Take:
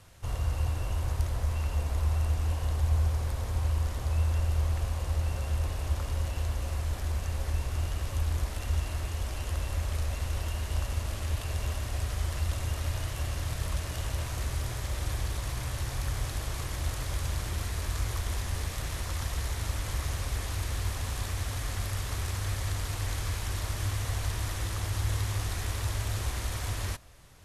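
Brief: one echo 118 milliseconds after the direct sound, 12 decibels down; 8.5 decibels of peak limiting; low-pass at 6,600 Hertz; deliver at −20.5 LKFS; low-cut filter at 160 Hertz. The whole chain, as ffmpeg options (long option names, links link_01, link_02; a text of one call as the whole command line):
ffmpeg -i in.wav -af "highpass=160,lowpass=6600,alimiter=level_in=8dB:limit=-24dB:level=0:latency=1,volume=-8dB,aecho=1:1:118:0.251,volume=20.5dB" out.wav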